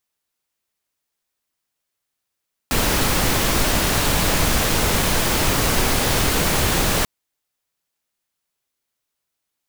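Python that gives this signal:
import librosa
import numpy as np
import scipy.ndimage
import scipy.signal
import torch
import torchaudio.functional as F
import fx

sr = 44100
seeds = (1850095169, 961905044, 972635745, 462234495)

y = fx.noise_colour(sr, seeds[0], length_s=4.34, colour='pink', level_db=-18.5)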